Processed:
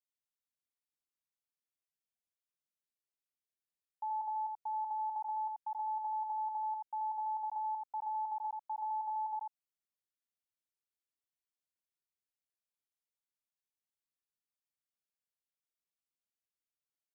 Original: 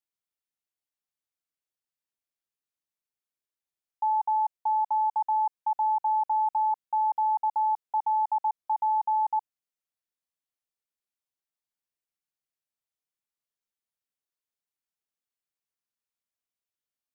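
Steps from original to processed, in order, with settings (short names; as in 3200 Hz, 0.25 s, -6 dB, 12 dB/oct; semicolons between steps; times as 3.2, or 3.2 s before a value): bell 880 Hz -4 dB 1.8 oct; on a send: echo 84 ms -3.5 dB; on the sum: gain -8.5 dB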